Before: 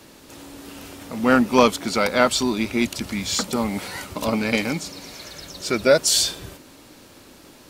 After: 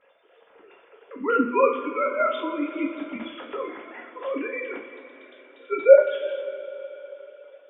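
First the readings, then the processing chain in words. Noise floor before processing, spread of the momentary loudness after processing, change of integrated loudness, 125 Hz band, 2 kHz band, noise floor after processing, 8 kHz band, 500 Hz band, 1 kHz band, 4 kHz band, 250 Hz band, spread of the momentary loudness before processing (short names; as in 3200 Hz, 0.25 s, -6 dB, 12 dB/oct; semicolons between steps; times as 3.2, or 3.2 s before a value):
-48 dBFS, 23 LU, -3.0 dB, under -25 dB, -7.0 dB, -58 dBFS, under -40 dB, +1.5 dB, -3.5 dB, -20.0 dB, -8.0 dB, 20 LU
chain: sine-wave speech; high shelf 2600 Hz -5 dB; in parallel at +3 dB: level quantiser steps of 10 dB; on the sum: two-slope reverb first 0.38 s, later 4 s, from -17 dB, DRR -2 dB; gain -12 dB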